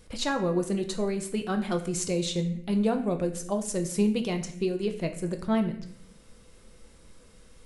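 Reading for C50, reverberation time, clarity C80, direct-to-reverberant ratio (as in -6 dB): 10.5 dB, 0.60 s, 13.5 dB, 5.0 dB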